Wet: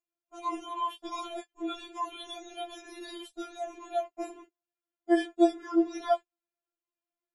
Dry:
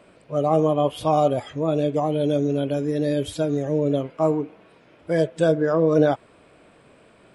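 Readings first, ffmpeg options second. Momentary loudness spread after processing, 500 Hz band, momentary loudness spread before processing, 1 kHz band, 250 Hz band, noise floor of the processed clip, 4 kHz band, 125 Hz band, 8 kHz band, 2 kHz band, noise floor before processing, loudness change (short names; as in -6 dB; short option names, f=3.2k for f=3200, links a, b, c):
16 LU, -13.0 dB, 6 LU, -7.0 dB, -8.0 dB, under -85 dBFS, -4.0 dB, under -40 dB, -6.5 dB, -7.5 dB, -54 dBFS, -10.0 dB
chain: -af "aeval=exprs='val(0)+0.0141*sin(2*PI*7000*n/s)':c=same,agate=range=-41dB:threshold=-25dB:ratio=16:detection=peak,afftfilt=real='re*4*eq(mod(b,16),0)':imag='im*4*eq(mod(b,16),0)':win_size=2048:overlap=0.75"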